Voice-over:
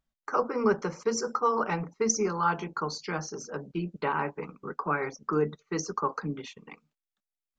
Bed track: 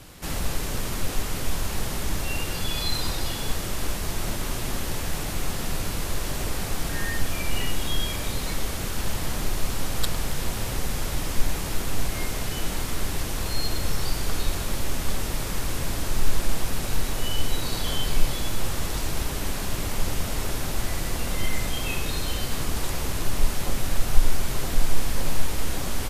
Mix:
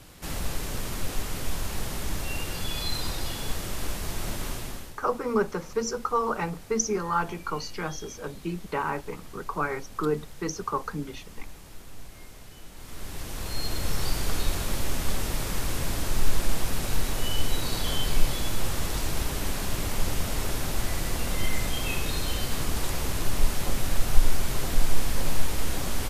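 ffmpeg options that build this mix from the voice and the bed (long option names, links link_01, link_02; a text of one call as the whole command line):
ffmpeg -i stem1.wav -i stem2.wav -filter_complex "[0:a]adelay=4700,volume=0dB[link_01];[1:a]volume=13.5dB,afade=type=out:start_time=4.47:duration=0.48:silence=0.188365,afade=type=in:start_time=12.74:duration=1.32:silence=0.141254[link_02];[link_01][link_02]amix=inputs=2:normalize=0" out.wav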